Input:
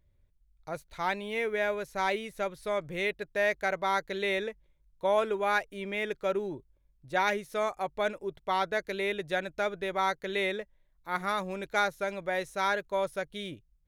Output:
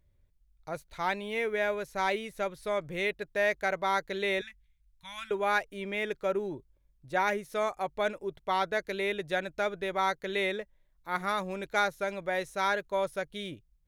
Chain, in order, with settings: 4.41–5.31 s: Chebyshev band-stop 100–2000 Hz, order 2; 6.22–7.45 s: dynamic bell 3.8 kHz, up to -6 dB, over -48 dBFS, Q 1.2

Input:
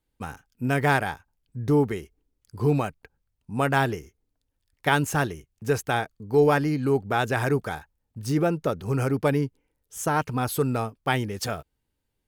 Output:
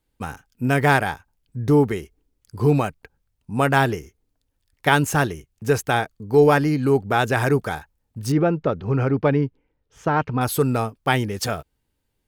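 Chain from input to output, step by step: 8.32–10.41 s: distance through air 250 m; trim +4.5 dB

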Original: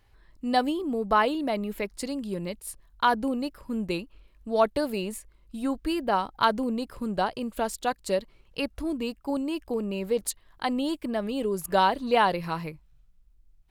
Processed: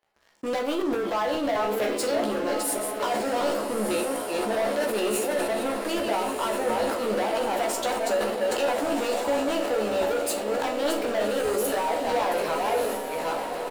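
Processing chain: chunks repeated in reverse 461 ms, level -11 dB; Bessel high-pass 420 Hz, order 4; peaking EQ 620 Hz +11 dB 1.1 oct; peak limiter -14 dBFS, peak gain reduction 11 dB; compression 6:1, threshold -34 dBFS, peak gain reduction 15 dB; waveshaping leveller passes 5; doubling 14 ms -4 dB; echo that smears into a reverb 1312 ms, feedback 58%, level -6.5 dB; on a send at -5.5 dB: reverberation RT60 0.55 s, pre-delay 23 ms; on the sum: decay stretcher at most 35 dB/s; trim -5.5 dB

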